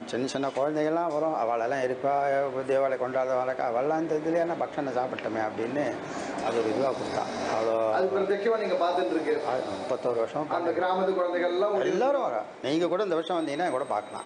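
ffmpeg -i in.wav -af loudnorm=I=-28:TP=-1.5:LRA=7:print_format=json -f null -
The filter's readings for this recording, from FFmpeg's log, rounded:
"input_i" : "-27.8",
"input_tp" : "-15.4",
"input_lra" : "1.7",
"input_thresh" : "-37.8",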